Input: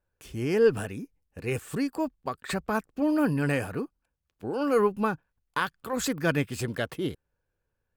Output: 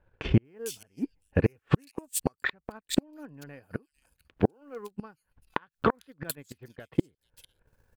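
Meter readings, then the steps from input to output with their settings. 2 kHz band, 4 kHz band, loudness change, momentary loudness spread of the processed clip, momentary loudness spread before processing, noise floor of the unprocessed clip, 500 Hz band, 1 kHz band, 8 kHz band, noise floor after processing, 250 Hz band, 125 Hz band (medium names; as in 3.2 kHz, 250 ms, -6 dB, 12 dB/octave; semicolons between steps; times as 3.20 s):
-5.0 dB, -1.5 dB, -3.0 dB, 18 LU, 13 LU, -81 dBFS, -7.0 dB, -5.0 dB, +1.5 dB, -82 dBFS, -3.0 dB, +2.0 dB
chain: band-stop 1.2 kHz, Q 16; inverted gate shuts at -26 dBFS, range -33 dB; in parallel at 0 dB: peak limiter -33.5 dBFS, peak gain reduction 10.5 dB; on the sum: bands offset in time lows, highs 450 ms, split 3.2 kHz; transient shaper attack +8 dB, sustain -10 dB; trim +7 dB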